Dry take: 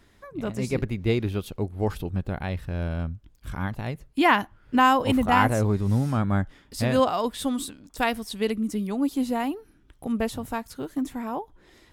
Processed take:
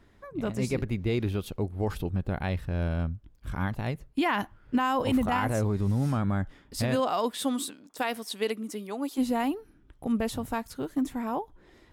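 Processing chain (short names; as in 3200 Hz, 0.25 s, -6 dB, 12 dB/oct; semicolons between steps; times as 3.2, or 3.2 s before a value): 6.95–9.17 HPF 180 Hz -> 460 Hz 12 dB/oct; limiter -17.5 dBFS, peak gain reduction 11 dB; mismatched tape noise reduction decoder only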